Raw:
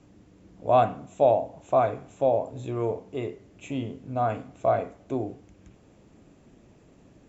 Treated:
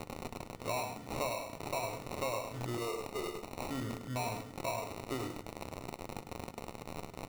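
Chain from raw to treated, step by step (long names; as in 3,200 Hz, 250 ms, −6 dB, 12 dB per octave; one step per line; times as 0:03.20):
spike at every zero crossing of −25 dBFS
0:02.77–0:03.69: Butterworth high-pass 330 Hz 96 dB per octave
downward compressor 6 to 1, threshold −30 dBFS, peak gain reduction 14.5 dB
decimation without filtering 27×
single-tap delay 103 ms −7.5 dB
convolution reverb RT60 0.30 s, pre-delay 7 ms, DRR 13.5 dB
level −4.5 dB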